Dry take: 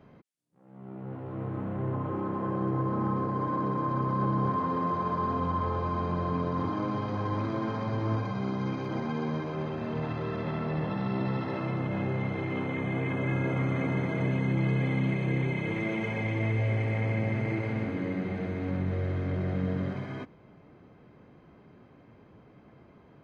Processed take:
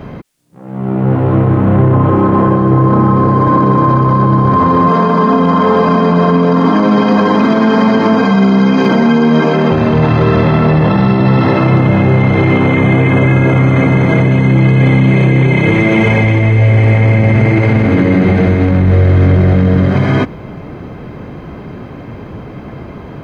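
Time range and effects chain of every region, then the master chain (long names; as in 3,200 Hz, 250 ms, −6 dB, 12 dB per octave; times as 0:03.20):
0:04.88–0:09.71: Chebyshev high-pass filter 180 Hz, order 3 + comb filter 4.4 ms, depth 68%
whole clip: low-shelf EQ 76 Hz +9 dB; boost into a limiter +27 dB; level −1 dB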